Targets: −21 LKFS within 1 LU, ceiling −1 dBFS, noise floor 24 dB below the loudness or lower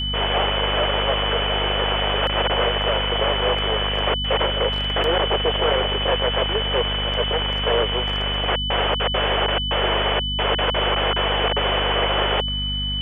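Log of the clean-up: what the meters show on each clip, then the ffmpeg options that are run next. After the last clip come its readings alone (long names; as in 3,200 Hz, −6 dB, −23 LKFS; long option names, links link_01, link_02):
mains hum 50 Hz; hum harmonics up to 250 Hz; level of the hum −25 dBFS; interfering tone 3,000 Hz; level of the tone −24 dBFS; integrated loudness −20.0 LKFS; sample peak −7.5 dBFS; target loudness −21.0 LKFS
→ -af "bandreject=frequency=50:width_type=h:width=6,bandreject=frequency=100:width_type=h:width=6,bandreject=frequency=150:width_type=h:width=6,bandreject=frequency=200:width_type=h:width=6,bandreject=frequency=250:width_type=h:width=6"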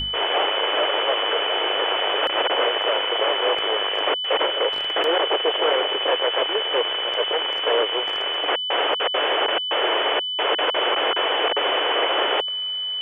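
mains hum none found; interfering tone 3,000 Hz; level of the tone −24 dBFS
→ -af "bandreject=frequency=3000:width=30"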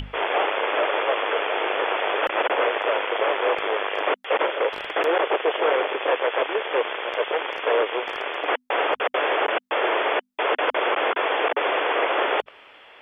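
interfering tone none found; integrated loudness −23.5 LKFS; sample peak −9.5 dBFS; target loudness −21.0 LKFS
→ -af "volume=2.5dB"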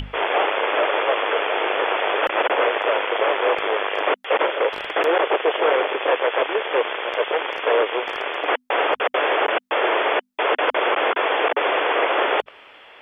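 integrated loudness −21.0 LKFS; sample peak −7.0 dBFS; background noise floor −58 dBFS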